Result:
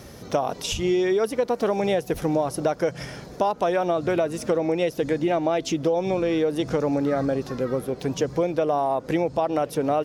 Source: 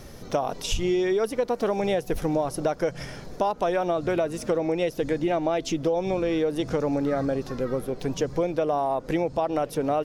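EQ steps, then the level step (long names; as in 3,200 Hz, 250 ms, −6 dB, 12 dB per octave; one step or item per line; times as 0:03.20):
high-pass filter 63 Hz
+2.0 dB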